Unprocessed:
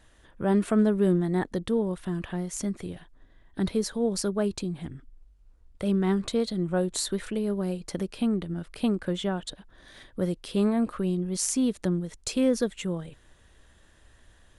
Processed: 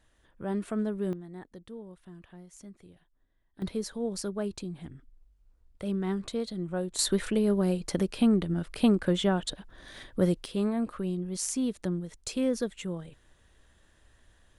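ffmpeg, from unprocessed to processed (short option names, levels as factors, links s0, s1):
-af "asetnsamples=n=441:p=0,asendcmd='1.13 volume volume -17.5dB;3.62 volume volume -6dB;6.99 volume volume 3dB;10.46 volume volume -4.5dB',volume=0.376"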